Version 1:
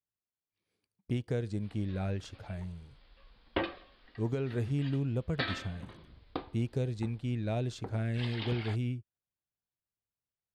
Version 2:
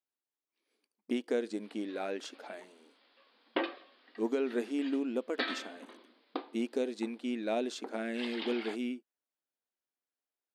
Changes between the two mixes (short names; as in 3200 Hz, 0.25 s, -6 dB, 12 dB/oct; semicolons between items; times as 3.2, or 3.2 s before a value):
speech +4.0 dB; master: add brick-wall FIR high-pass 220 Hz